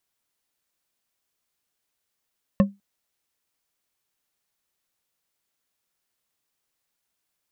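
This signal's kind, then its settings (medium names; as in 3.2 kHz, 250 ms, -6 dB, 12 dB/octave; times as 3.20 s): glass hit bar, length 0.20 s, lowest mode 199 Hz, decay 0.21 s, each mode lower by 6.5 dB, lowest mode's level -10 dB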